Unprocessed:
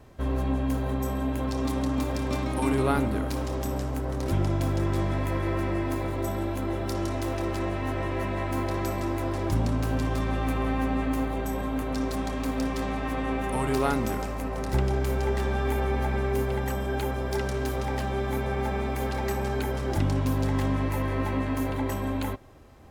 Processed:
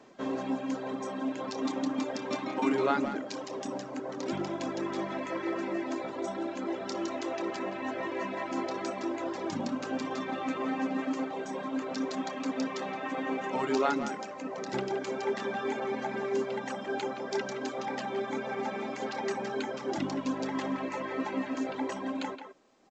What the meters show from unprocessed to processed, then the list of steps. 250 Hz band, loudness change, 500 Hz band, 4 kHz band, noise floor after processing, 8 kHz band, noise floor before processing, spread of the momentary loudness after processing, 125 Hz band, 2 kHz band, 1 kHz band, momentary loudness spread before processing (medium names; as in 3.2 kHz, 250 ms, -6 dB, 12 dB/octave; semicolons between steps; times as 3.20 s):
-4.0 dB, -5.0 dB, -3.0 dB, -2.0 dB, -41 dBFS, -5.0 dB, -31 dBFS, 5 LU, -20.5 dB, -2.5 dB, -2.5 dB, 4 LU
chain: short-mantissa float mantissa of 4-bit; reverb removal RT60 1.9 s; high-pass 200 Hz 24 dB/octave; speakerphone echo 170 ms, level -8 dB; A-law 128 kbps 16 kHz